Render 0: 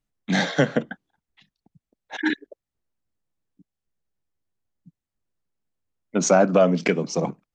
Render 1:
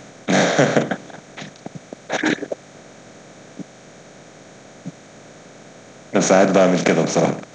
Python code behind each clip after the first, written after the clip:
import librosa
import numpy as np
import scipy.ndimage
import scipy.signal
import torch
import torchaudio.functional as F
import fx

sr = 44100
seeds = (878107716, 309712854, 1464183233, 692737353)

y = fx.bin_compress(x, sr, power=0.4)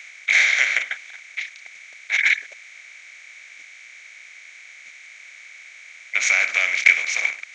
y = fx.highpass_res(x, sr, hz=2200.0, q=9.4)
y = y * librosa.db_to_amplitude(-3.5)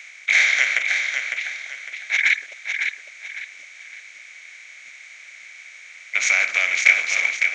y = fx.echo_feedback(x, sr, ms=555, feedback_pct=33, wet_db=-6.0)